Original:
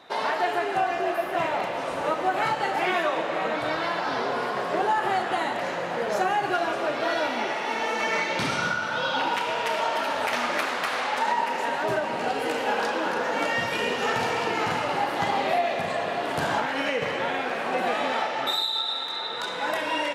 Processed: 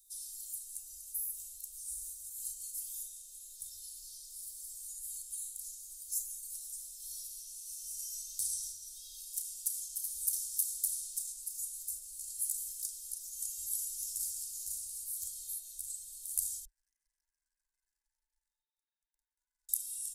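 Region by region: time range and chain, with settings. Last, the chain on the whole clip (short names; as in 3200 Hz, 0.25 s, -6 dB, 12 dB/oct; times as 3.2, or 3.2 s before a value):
16.65–19.69 Chebyshev band-pass 860–2300 Hz, order 5 + compressor 4:1, threshold -32 dBFS + AM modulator 22 Hz, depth 35%
whole clip: inverse Chebyshev band-stop 160–2400 Hz, stop band 70 dB; high shelf 2000 Hz +9 dB; comb 1.9 ms, depth 67%; gain +6.5 dB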